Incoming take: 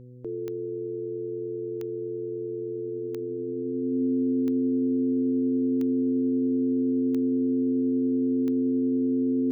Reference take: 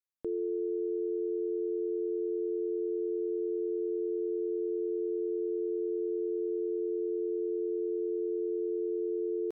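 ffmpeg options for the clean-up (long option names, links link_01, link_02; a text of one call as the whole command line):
ffmpeg -i in.wav -af "adeclick=threshold=4,bandreject=frequency=124.4:width_type=h:width=4,bandreject=frequency=248.8:width_type=h:width=4,bandreject=frequency=373.2:width_type=h:width=4,bandreject=frequency=497.6:width_type=h:width=4,bandreject=frequency=260:width=30" out.wav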